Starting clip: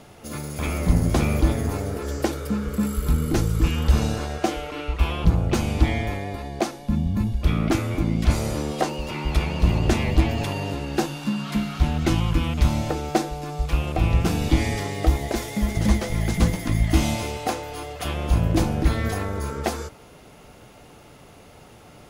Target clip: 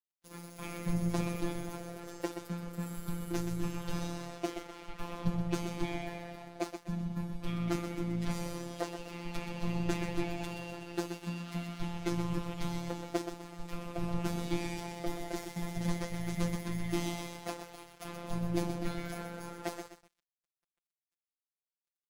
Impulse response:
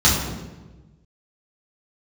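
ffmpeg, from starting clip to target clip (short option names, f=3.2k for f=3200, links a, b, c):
-af "aecho=1:1:126|252|378|504|630:0.398|0.187|0.0879|0.0413|0.0194,aeval=exprs='sgn(val(0))*max(abs(val(0))-0.0158,0)':c=same,afftfilt=real='hypot(re,im)*cos(PI*b)':imag='0':win_size=1024:overlap=0.75,volume=-8.5dB"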